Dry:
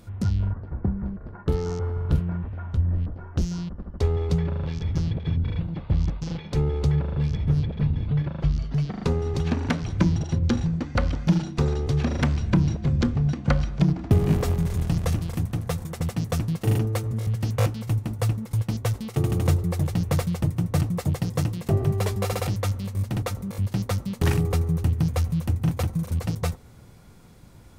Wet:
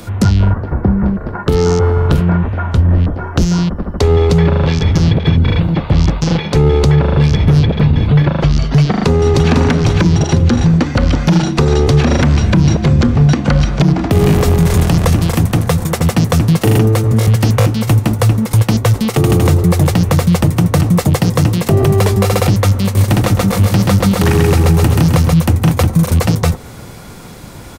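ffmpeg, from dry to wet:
-filter_complex "[0:a]asplit=2[a][b];[b]afade=t=in:st=8.92:d=0.01,afade=t=out:st=9.51:d=0.01,aecho=0:1:500|1000|1500:0.501187|0.125297|0.0313242[c];[a][c]amix=inputs=2:normalize=0,asettb=1/sr,asplit=3[d][e][f];[d]atrim=end=22.844[g];[e]atrim=start=22.84:end=25.34,asetpts=PTS-STARTPTS,afade=t=in:d=0.004:c=qsin,afade=t=out:st=2.496:d=0.004:c=qsin,aecho=1:1:131|262|393|524|655|786:0.596|0.286|0.137|0.0659|0.0316|0.0152,atrim=end_sample=110250[h];[f]atrim=start=25.336[i];[g][h]acrossfade=d=0.004:c1=hsin:c2=qsin[j];[j][i]acrossfade=d=0.004:c1=qsin:c2=hsin,lowshelf=f=180:g=-8.5,acrossover=split=170|340|2100[k][l][m][n];[k]acompressor=threshold=-28dB:ratio=4[o];[l]acompressor=threshold=-34dB:ratio=4[p];[m]acompressor=threshold=-36dB:ratio=4[q];[n]acompressor=threshold=-43dB:ratio=4[r];[o][p][q][r]amix=inputs=4:normalize=0,alimiter=level_in=22.5dB:limit=-1dB:release=50:level=0:latency=1,volume=-1dB"

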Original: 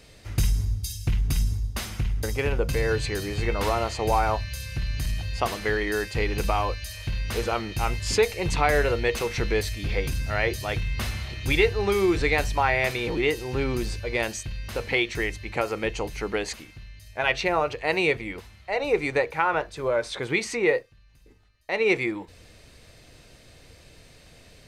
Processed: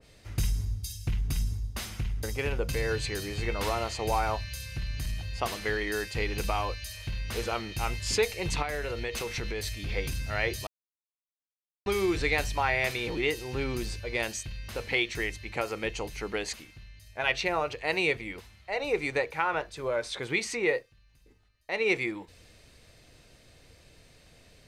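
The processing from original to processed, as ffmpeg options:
-filter_complex "[0:a]asettb=1/sr,asplit=3[a][b][c];[a]atrim=end=8.624[d];[b]atrim=start=8.62:end=9.88,asetpts=PTS-STARTPTS,afade=t=in:d=0.004:c=qsin,afade=t=out:st=1.256:d=0.004:c=qsin,acompressor=threshold=-24dB:ratio=5:attack=3.2:release=140:knee=1:detection=peak[e];[c]atrim=start=9.876[f];[d][e]acrossfade=d=0.004:c1=hsin:c2=qsin[g];[g][f]acrossfade=d=0.004:c1=qsin:c2=hsin,asplit=3[h][i][j];[h]atrim=end=10.67,asetpts=PTS-STARTPTS,afade=t=out:st=10.666:d=0.004:c=hsin[k];[i]atrim=start=10.67:end=11.86,asetpts=PTS-STARTPTS,volume=0[l];[j]atrim=start=11.86,asetpts=PTS-STARTPTS,afade=t=in:d=0.004:c=hsin[m];[k][l][m]concat=n=3:v=0:a=1,adynamicequalizer=threshold=0.0158:dfrequency=1900:dqfactor=0.7:tfrequency=1900:tqfactor=0.7:attack=5:release=100:ratio=0.375:range=2:mode=boostabove:tftype=highshelf,volume=-5.5dB"

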